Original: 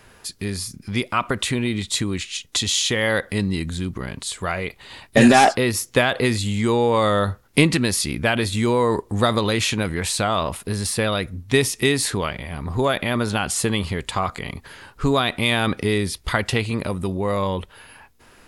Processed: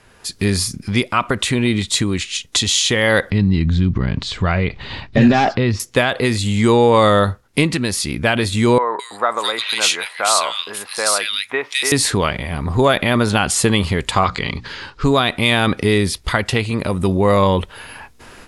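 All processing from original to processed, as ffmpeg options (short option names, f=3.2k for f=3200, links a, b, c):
-filter_complex "[0:a]asettb=1/sr,asplit=3[a][b][c];[a]atrim=end=3.304[d];[b]atrim=start=3.3:end=5.8,asetpts=PTS-STARTPTS,afade=t=in:d=0.004:c=qsin,afade=t=out:st=2.496:d=0.004:c=qsin,bass=f=250:g=10,treble=f=4k:g=-2,acompressor=threshold=-32dB:ratio=1.5:attack=3.2:release=140:knee=1:detection=peak,lowpass=f=5.4k:w=0.5412,lowpass=f=5.4k:w=1.3066[e];[c]atrim=start=5.796[f];[d][e]acrossfade=d=0.004:c1=hsin:c2=qsin[g];[g][f]acrossfade=d=0.004:c1=qsin:c2=hsin,asettb=1/sr,asplit=3[h][i][j];[h]atrim=end=8.784[k];[i]atrim=start=8.78:end=11.92,asetpts=PTS-STARTPTS,afade=t=in:d=0.004:c=qsin,afade=t=out:st=3.136:d=0.004:c=qsin,highpass=830,bandreject=f=1.8k:w=20,acrossover=split=2000[l][m];[m]adelay=210[n];[l][n]amix=inputs=2:normalize=0,atrim=end_sample=138474[o];[j]atrim=start=11.916[p];[k][o]acrossfade=d=0.004:c1=hsin:c2=qsin[q];[q][p]acrossfade=d=0.004:c1=qsin:c2=hsin,asettb=1/sr,asplit=3[r][s][t];[r]atrim=end=14.244[u];[s]atrim=start=14.24:end=15.04,asetpts=PTS-STARTPTS,afade=t=in:d=0.004:c=qsin,afade=t=out:st=0.796:d=0.004:c=qsin,lowpass=f=4.8k:t=q:w=1.8,equalizer=f=680:t=o:w=0.31:g=-8,bandreject=f=60:t=h:w=6,bandreject=f=120:t=h:w=6,bandreject=f=180:t=h:w=6,bandreject=f=240:t=h:w=6,bandreject=f=300:t=h:w=6[v];[t]atrim=start=15.036[w];[u][v]acrossfade=d=0.004:c1=hsin:c2=qsin[x];[x][w]acrossfade=d=0.004:c1=qsin:c2=hsin,dynaudnorm=f=190:g=3:m=11.5dB,lowpass=11k,volume=-1dB"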